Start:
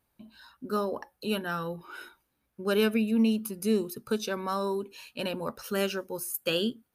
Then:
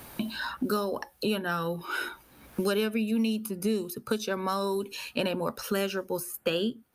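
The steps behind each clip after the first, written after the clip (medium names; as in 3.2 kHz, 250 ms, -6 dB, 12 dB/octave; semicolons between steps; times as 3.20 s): three bands compressed up and down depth 100%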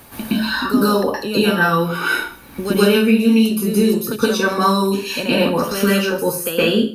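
reverberation RT60 0.40 s, pre-delay 115 ms, DRR -10 dB; trim +3 dB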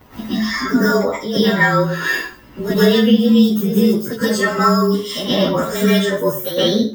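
frequency axis rescaled in octaves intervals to 109%; tape noise reduction on one side only decoder only; trim +3 dB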